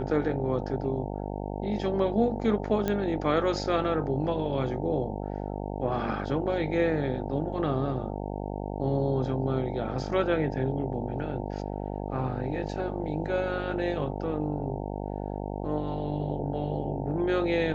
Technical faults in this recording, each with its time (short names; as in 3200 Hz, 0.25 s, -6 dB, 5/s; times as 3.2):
buzz 50 Hz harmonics 18 -34 dBFS
2.88 pop -15 dBFS